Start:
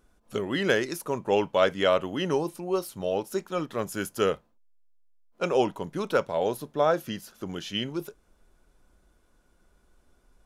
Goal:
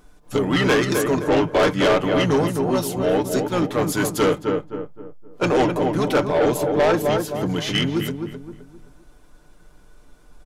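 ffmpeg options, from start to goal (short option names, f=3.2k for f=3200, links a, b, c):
-filter_complex "[0:a]asplit=2[a][b];[b]asetrate=29433,aresample=44100,atempo=1.49831,volume=-5dB[c];[a][c]amix=inputs=2:normalize=0,acontrast=24,aecho=1:1:6.7:0.5,asplit=2[d][e];[e]adelay=260,lowpass=f=1.5k:p=1,volume=-7dB,asplit=2[f][g];[g]adelay=260,lowpass=f=1.5k:p=1,volume=0.36,asplit=2[h][i];[i]adelay=260,lowpass=f=1.5k:p=1,volume=0.36,asplit=2[j][k];[k]adelay=260,lowpass=f=1.5k:p=1,volume=0.36[l];[d][f][h][j][l]amix=inputs=5:normalize=0,asoftclip=type=tanh:threshold=-17.5dB,volume=4.5dB"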